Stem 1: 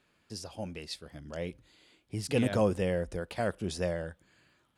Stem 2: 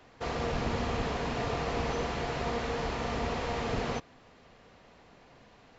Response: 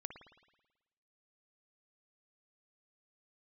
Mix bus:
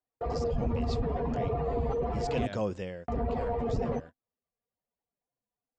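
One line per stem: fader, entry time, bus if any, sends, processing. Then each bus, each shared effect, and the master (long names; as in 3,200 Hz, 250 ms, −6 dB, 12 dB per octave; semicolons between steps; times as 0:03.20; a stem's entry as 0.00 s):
0:02.76 −4.5 dB → 0:02.98 −12 dB, 0.00 s, send −19 dB, elliptic low-pass filter 7,400 Hz, stop band 40 dB
+2.0 dB, 0.00 s, muted 0:02.46–0:03.08, send −23 dB, expanding power law on the bin magnitudes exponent 2.3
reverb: on, RT60 1.1 s, pre-delay 54 ms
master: noise gate −42 dBFS, range −43 dB; one half of a high-frequency compander encoder only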